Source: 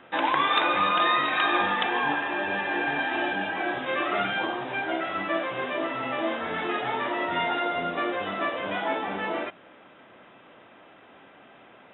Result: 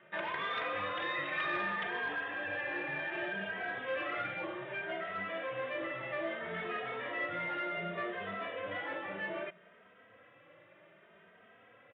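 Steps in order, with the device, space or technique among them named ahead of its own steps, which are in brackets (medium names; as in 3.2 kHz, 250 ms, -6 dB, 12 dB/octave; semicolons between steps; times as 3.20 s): barber-pole flanger into a guitar amplifier (endless flanger 2.9 ms +0.64 Hz; saturation -23 dBFS, distortion -17 dB; cabinet simulation 87–3400 Hz, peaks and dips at 100 Hz +7 dB, 170 Hz +6 dB, 260 Hz -9 dB, 560 Hz +6 dB, 830 Hz -8 dB, 1.9 kHz +6 dB); trim -6.5 dB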